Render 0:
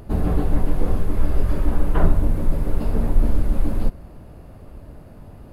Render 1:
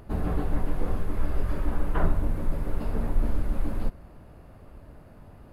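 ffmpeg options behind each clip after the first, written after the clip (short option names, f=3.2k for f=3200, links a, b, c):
-af "equalizer=f=1.5k:t=o:w=2:g=5,volume=-7.5dB"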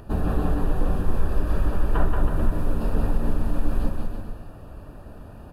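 -af "acompressor=threshold=-21dB:ratio=6,asuperstop=centerf=2100:order=20:qfactor=5.6,aecho=1:1:180|324|439.2|531.4|605.1:0.631|0.398|0.251|0.158|0.1,volume=4.5dB"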